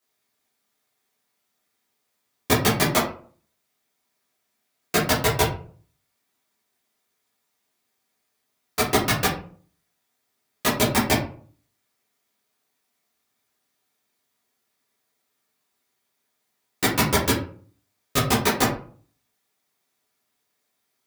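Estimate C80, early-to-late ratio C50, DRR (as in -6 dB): 11.5 dB, 7.0 dB, -8.5 dB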